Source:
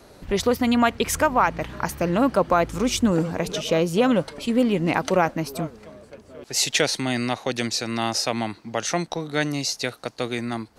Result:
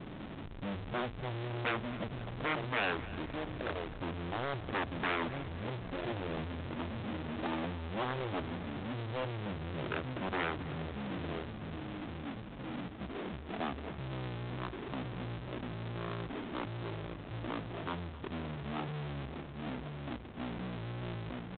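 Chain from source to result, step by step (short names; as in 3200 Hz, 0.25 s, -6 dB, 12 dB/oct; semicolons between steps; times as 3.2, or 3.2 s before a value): Wiener smoothing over 41 samples; steep low-pass 1400 Hz 72 dB/oct; notches 50/100/150/200 Hz; echo 0.447 s -17 dB; wavefolder -20.5 dBFS; limiter -29.5 dBFS, peak gain reduction 9 dB; power-law curve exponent 0.35; thinning echo 0.131 s, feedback 54%, high-pass 170 Hz, level -17 dB; speed mistake 15 ips tape played at 7.5 ips; tilt +3 dB/oct; gain +1 dB; G.726 32 kbps 8000 Hz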